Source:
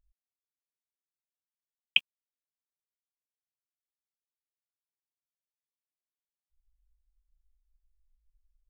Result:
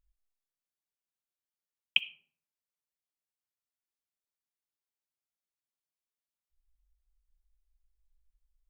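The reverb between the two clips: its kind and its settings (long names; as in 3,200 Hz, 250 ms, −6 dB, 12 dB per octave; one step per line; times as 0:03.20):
comb and all-pass reverb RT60 0.62 s, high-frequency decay 0.45×, pre-delay 20 ms, DRR 15 dB
level −2.5 dB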